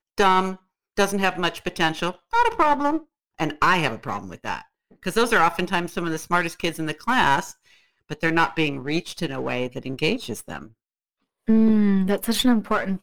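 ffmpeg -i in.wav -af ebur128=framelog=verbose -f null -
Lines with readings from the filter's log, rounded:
Integrated loudness:
  I:         -22.6 LUFS
  Threshold: -33.2 LUFS
Loudness range:
  LRA:         3.4 LU
  Threshold: -43.7 LUFS
  LRA low:   -25.9 LUFS
  LRA high:  -22.5 LUFS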